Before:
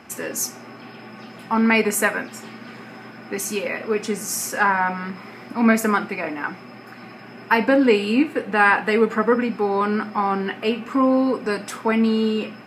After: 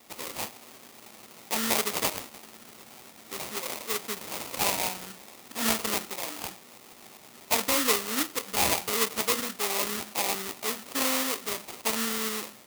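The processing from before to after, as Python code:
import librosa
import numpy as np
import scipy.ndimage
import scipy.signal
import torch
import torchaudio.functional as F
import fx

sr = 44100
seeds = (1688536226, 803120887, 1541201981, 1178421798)

y = fx.sample_hold(x, sr, seeds[0], rate_hz=1600.0, jitter_pct=20)
y = fx.tilt_eq(y, sr, slope=3.5)
y = y * 10.0 ** (-9.5 / 20.0)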